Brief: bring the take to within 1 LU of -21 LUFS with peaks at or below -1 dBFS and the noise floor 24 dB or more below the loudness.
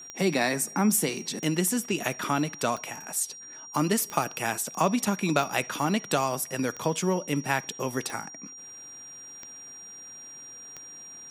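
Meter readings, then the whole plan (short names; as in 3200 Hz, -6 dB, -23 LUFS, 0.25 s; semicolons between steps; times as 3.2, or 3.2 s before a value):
clicks 9; steady tone 5700 Hz; tone level -42 dBFS; loudness -27.5 LUFS; peak -9.0 dBFS; loudness target -21.0 LUFS
-> de-click; notch 5700 Hz, Q 30; gain +6.5 dB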